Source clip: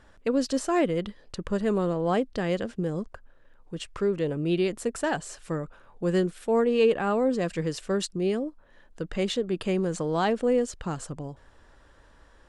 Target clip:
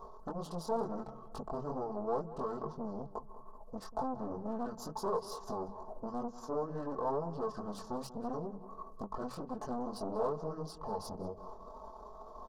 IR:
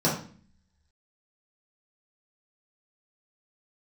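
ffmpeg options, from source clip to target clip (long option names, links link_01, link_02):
-filter_complex "[0:a]bandreject=frequency=50:width_type=h:width=6,bandreject=frequency=100:width_type=h:width=6,bandreject=frequency=150:width_type=h:width=6,bandreject=frequency=200:width_type=h:width=6,bandreject=frequency=250:width_type=h:width=6,bandreject=frequency=300:width_type=h:width=6,acompressor=threshold=-41dB:ratio=3,asetrate=28595,aresample=44100,atempo=1.54221,flanger=delay=19:depth=5.7:speed=2.2,aecho=1:1:4.6:0.9,aeval=exprs='(tanh(126*val(0)+0.55)-tanh(0.55))/126':channel_layout=same,firequalizer=gain_entry='entry(300,0);entry(470,11);entry(1100,12);entry(2100,-24);entry(4200,-2);entry(6100,0);entry(9200,9)':delay=0.05:min_phase=1,asplit=2[link_01][link_02];[link_02]adelay=189,lowpass=frequency=3400:poles=1,volume=-15dB,asplit=2[link_03][link_04];[link_04]adelay=189,lowpass=frequency=3400:poles=1,volume=0.45,asplit=2[link_05][link_06];[link_06]adelay=189,lowpass=frequency=3400:poles=1,volume=0.45,asplit=2[link_07][link_08];[link_08]adelay=189,lowpass=frequency=3400:poles=1,volume=0.45[link_09];[link_03][link_05][link_07][link_09]amix=inputs=4:normalize=0[link_10];[link_01][link_10]amix=inputs=2:normalize=0,volume=4dB"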